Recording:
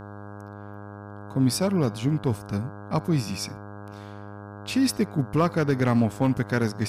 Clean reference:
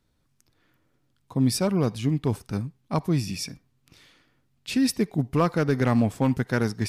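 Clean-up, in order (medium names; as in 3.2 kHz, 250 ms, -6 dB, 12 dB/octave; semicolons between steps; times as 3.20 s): de-hum 102 Hz, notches 16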